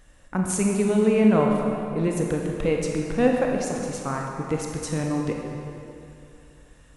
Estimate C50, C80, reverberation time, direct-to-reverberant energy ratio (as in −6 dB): 1.0 dB, 2.5 dB, 2.7 s, 0.0 dB